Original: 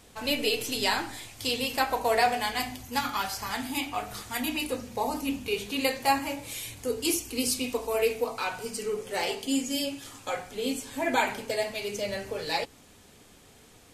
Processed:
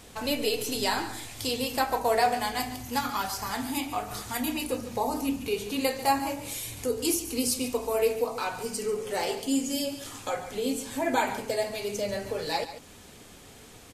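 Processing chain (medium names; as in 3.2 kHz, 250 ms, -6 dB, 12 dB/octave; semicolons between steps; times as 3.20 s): delay 142 ms -14 dB; in parallel at -2 dB: compression, threshold -40 dBFS, peak gain reduction 20 dB; on the sum: dynamic bell 2.6 kHz, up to -6 dB, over -43 dBFS, Q 0.96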